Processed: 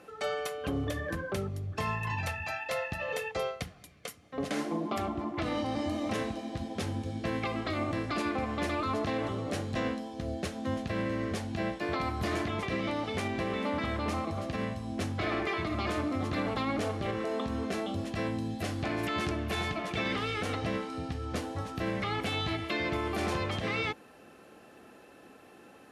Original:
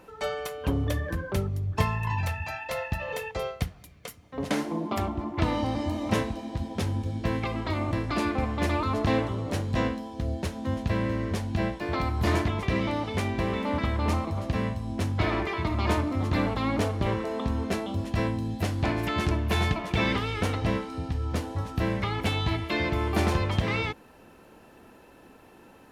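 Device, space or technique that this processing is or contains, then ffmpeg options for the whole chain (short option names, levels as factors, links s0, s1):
PA system with an anti-feedback notch: -af "highpass=f=200:p=1,asuperstop=centerf=940:order=8:qfactor=7.5,lowpass=f=12000:w=0.5412,lowpass=f=12000:w=1.3066,alimiter=limit=0.075:level=0:latency=1:release=83"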